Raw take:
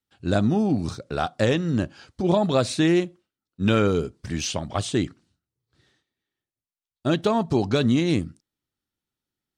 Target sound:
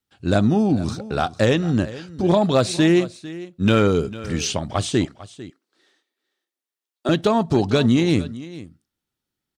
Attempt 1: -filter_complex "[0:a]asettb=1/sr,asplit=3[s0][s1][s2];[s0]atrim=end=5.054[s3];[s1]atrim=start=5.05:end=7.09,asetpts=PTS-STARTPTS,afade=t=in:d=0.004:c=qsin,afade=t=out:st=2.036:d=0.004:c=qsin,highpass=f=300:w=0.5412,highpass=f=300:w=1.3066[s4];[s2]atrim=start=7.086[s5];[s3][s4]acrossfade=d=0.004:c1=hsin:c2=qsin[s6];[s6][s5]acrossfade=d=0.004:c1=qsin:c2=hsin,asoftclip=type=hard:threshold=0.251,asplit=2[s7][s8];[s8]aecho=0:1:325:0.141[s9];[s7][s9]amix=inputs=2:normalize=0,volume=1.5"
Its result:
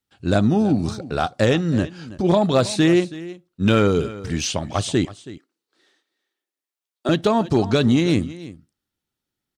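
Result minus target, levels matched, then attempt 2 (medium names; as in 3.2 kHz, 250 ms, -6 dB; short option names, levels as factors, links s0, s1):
echo 124 ms early
-filter_complex "[0:a]asettb=1/sr,asplit=3[s0][s1][s2];[s0]atrim=end=5.054[s3];[s1]atrim=start=5.05:end=7.09,asetpts=PTS-STARTPTS,afade=t=in:d=0.004:c=qsin,afade=t=out:st=2.036:d=0.004:c=qsin,highpass=f=300:w=0.5412,highpass=f=300:w=1.3066[s4];[s2]atrim=start=7.086[s5];[s3][s4]acrossfade=d=0.004:c1=hsin:c2=qsin[s6];[s6][s5]acrossfade=d=0.004:c1=qsin:c2=hsin,asoftclip=type=hard:threshold=0.251,asplit=2[s7][s8];[s8]aecho=0:1:449:0.141[s9];[s7][s9]amix=inputs=2:normalize=0,volume=1.5"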